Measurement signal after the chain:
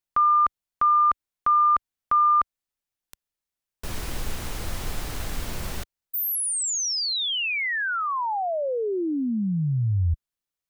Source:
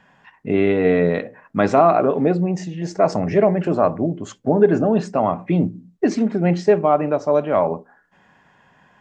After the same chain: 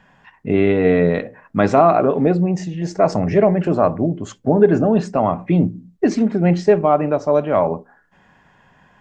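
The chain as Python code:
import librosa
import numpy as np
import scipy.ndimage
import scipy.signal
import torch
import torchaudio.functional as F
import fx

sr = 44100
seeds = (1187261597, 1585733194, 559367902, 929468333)

y = fx.low_shelf(x, sr, hz=78.0, db=11.5)
y = y * librosa.db_to_amplitude(1.0)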